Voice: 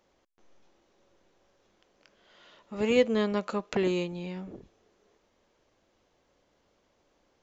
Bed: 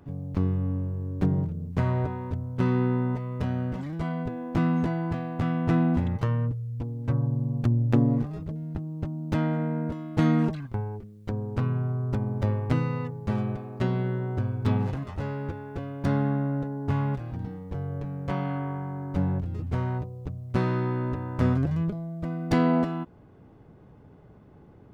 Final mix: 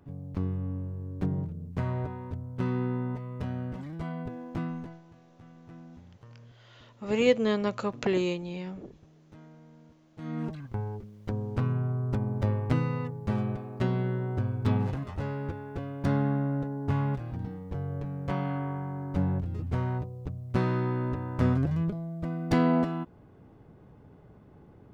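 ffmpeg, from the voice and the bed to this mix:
-filter_complex "[0:a]adelay=4300,volume=1.06[s0];[1:a]volume=8.41,afade=t=out:st=4.37:d=0.65:silence=0.1,afade=t=in:st=10.17:d=0.71:silence=0.0630957[s1];[s0][s1]amix=inputs=2:normalize=0"

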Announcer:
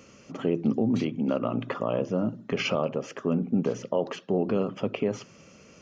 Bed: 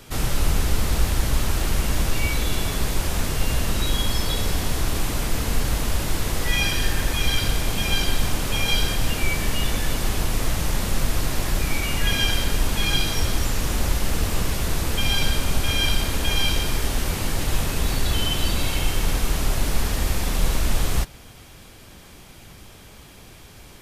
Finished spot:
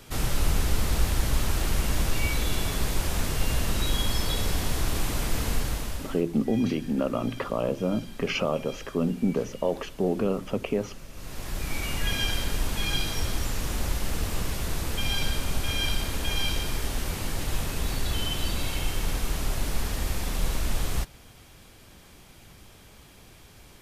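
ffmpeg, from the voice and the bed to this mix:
-filter_complex "[0:a]adelay=5700,volume=1[s0];[1:a]volume=4.47,afade=t=out:st=5.47:d=0.77:silence=0.112202,afade=t=in:st=11.12:d=0.72:silence=0.149624[s1];[s0][s1]amix=inputs=2:normalize=0"

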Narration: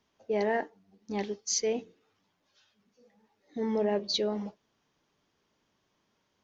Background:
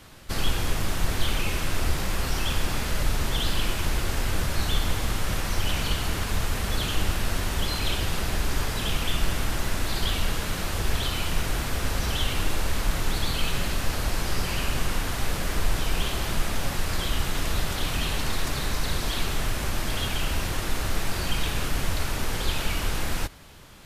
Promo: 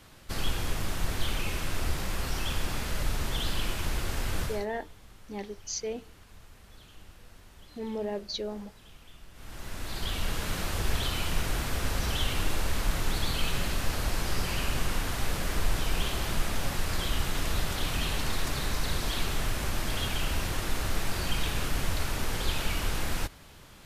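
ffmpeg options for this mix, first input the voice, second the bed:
-filter_complex "[0:a]adelay=4200,volume=0.562[s0];[1:a]volume=7.94,afade=t=out:st=4.43:d=0.23:silence=0.0891251,afade=t=in:st=9.33:d=1.19:silence=0.0707946[s1];[s0][s1]amix=inputs=2:normalize=0"

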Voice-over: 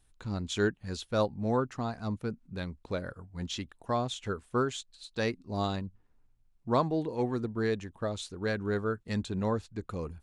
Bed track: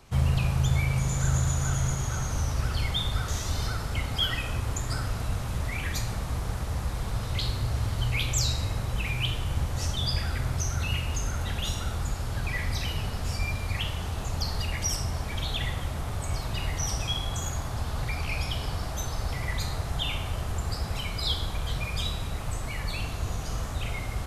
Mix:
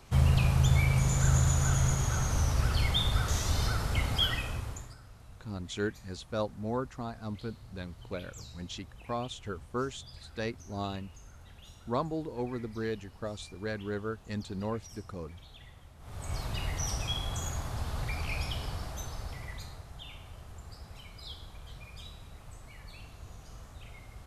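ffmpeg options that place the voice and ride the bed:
-filter_complex "[0:a]adelay=5200,volume=0.596[s0];[1:a]volume=7.94,afade=t=out:st=4.1:d=0.85:silence=0.0794328,afade=t=in:st=15.99:d=0.41:silence=0.125893,afade=t=out:st=18.37:d=1.49:silence=0.237137[s1];[s0][s1]amix=inputs=2:normalize=0"

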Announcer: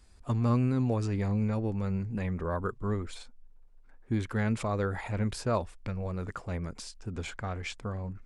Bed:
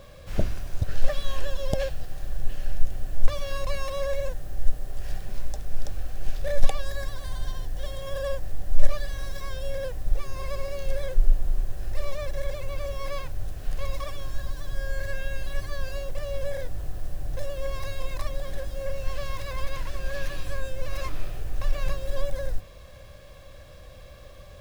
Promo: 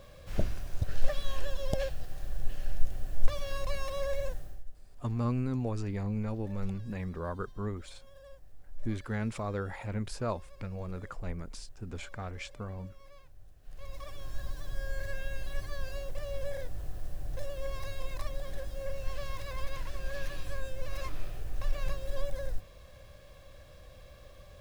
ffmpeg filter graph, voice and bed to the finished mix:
-filter_complex "[0:a]adelay=4750,volume=0.596[s0];[1:a]volume=3.98,afade=t=out:st=4.35:d=0.29:silence=0.125893,afade=t=in:st=13.62:d=0.82:silence=0.141254[s1];[s0][s1]amix=inputs=2:normalize=0"

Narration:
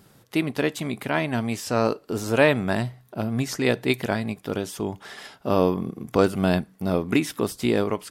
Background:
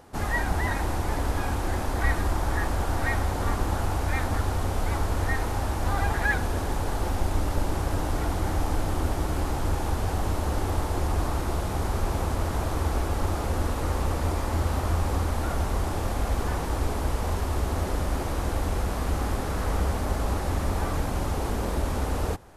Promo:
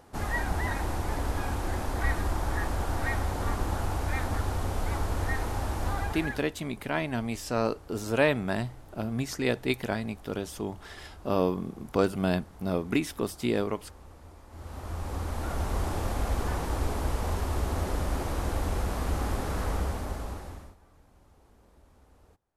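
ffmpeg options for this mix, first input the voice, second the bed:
-filter_complex "[0:a]adelay=5800,volume=0.531[s0];[1:a]volume=7.5,afade=t=out:st=5.84:d=0.65:silence=0.1,afade=t=in:st=14.49:d=1.33:silence=0.0891251,afade=t=out:st=19.59:d=1.17:silence=0.0334965[s1];[s0][s1]amix=inputs=2:normalize=0"

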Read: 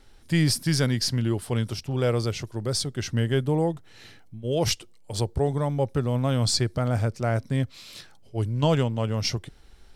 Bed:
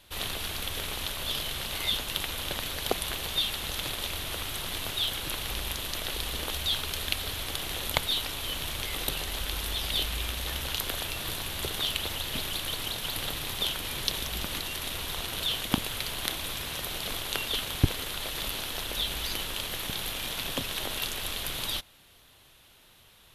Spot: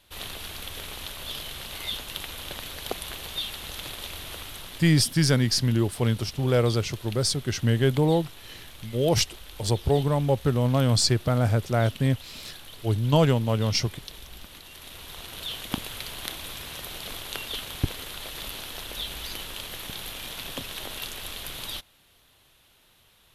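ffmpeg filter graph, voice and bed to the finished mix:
-filter_complex "[0:a]adelay=4500,volume=1.26[s0];[1:a]volume=2,afade=t=out:st=4.33:d=0.72:silence=0.354813,afade=t=in:st=14.6:d=1.2:silence=0.334965[s1];[s0][s1]amix=inputs=2:normalize=0"

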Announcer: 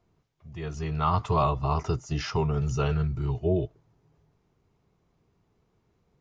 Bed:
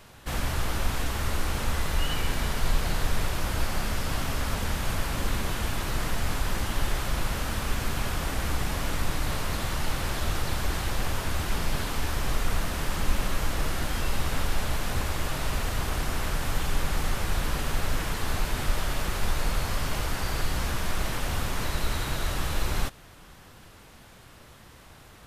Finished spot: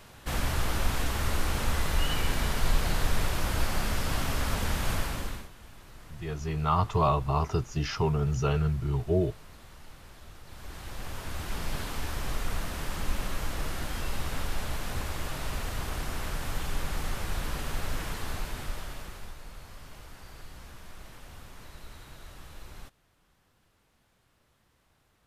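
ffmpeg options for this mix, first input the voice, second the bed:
-filter_complex "[0:a]adelay=5650,volume=0.944[s0];[1:a]volume=5.96,afade=t=out:st=4.94:d=0.55:silence=0.0944061,afade=t=in:st=10.44:d=1.28:silence=0.158489,afade=t=out:st=18.1:d=1.27:silence=0.211349[s1];[s0][s1]amix=inputs=2:normalize=0"

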